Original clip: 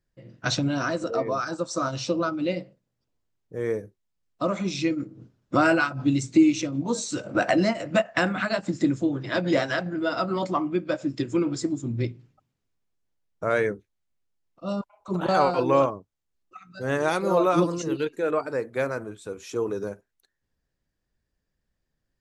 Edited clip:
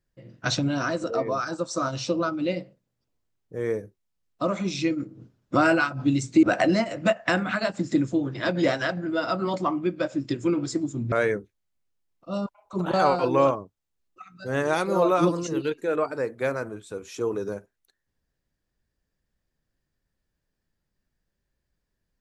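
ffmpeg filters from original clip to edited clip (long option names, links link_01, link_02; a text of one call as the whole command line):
ffmpeg -i in.wav -filter_complex "[0:a]asplit=3[link_01][link_02][link_03];[link_01]atrim=end=6.432[link_04];[link_02]atrim=start=7.318:end=12.012[link_05];[link_03]atrim=start=13.468[link_06];[link_04][link_05]acrossfade=duration=0.004:curve1=hsin:curve2=hsin[link_07];[link_07][link_06]acrossfade=duration=0.004:curve1=hsin:curve2=hsin" out.wav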